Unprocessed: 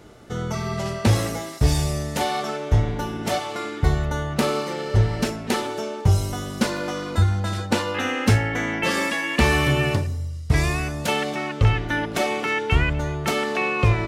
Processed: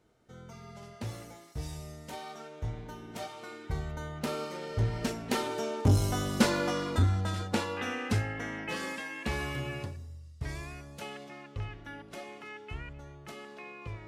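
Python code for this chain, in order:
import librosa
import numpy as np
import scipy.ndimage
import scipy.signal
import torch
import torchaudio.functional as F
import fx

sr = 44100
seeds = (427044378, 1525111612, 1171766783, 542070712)

y = fx.doppler_pass(x, sr, speed_mps=12, closest_m=7.5, pass_at_s=6.32)
y = fx.transformer_sat(y, sr, knee_hz=240.0)
y = y * librosa.db_to_amplitude(-1.5)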